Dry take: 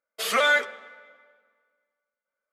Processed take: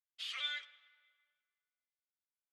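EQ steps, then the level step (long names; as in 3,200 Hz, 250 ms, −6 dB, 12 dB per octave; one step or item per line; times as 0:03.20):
four-pole ladder band-pass 3,700 Hz, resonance 50%
high-shelf EQ 2,800 Hz −9.5 dB
+1.5 dB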